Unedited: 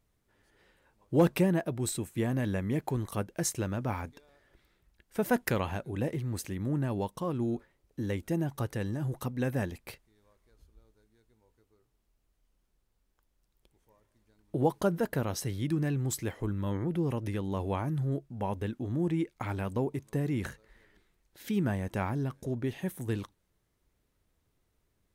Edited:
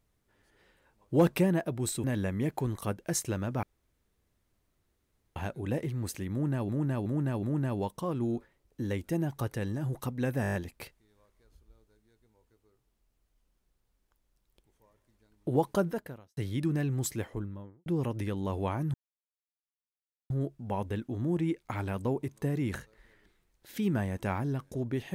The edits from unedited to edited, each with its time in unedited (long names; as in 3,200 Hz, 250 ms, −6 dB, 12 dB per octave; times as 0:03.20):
0:02.04–0:02.34: remove
0:03.93–0:05.66: fill with room tone
0:06.62–0:06.99: repeat, 4 plays
0:09.61: stutter 0.02 s, 7 plays
0:14.90–0:15.44: fade out quadratic
0:16.18–0:16.93: fade out and dull
0:18.01: splice in silence 1.36 s